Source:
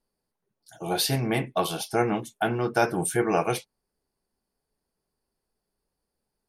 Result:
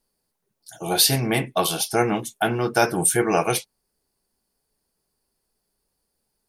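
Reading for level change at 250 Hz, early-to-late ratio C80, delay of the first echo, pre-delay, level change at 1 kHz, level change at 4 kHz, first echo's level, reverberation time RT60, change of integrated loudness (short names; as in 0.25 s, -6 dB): +3.0 dB, none, none, none, +3.5 dB, +8.0 dB, none, none, +5.0 dB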